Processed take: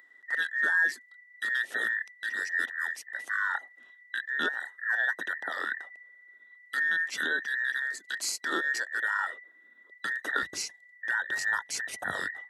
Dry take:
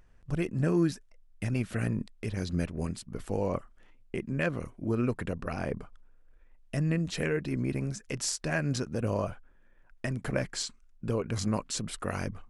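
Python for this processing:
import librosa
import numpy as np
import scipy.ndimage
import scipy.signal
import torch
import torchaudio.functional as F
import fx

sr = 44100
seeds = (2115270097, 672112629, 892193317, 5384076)

y = fx.band_invert(x, sr, width_hz=2000)
y = fx.highpass(y, sr, hz=fx.steps((0.0, 250.0), (10.43, 66.0)), slope=24)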